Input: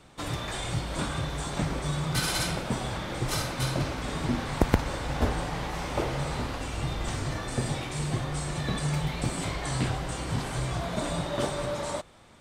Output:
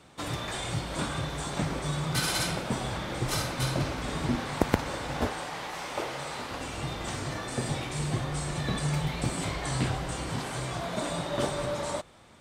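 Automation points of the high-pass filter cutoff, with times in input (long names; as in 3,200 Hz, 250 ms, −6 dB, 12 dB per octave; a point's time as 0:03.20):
high-pass filter 6 dB per octave
85 Hz
from 0:02.78 41 Hz
from 0:04.36 150 Hz
from 0:05.27 620 Hz
from 0:06.51 150 Hz
from 0:07.69 43 Hz
from 0:10.29 180 Hz
from 0:11.31 44 Hz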